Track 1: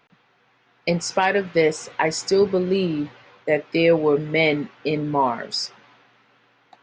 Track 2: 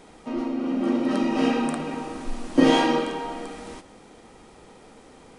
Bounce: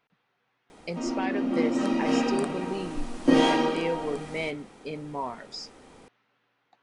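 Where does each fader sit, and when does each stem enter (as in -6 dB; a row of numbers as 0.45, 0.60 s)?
-13.0, -2.5 dB; 0.00, 0.70 s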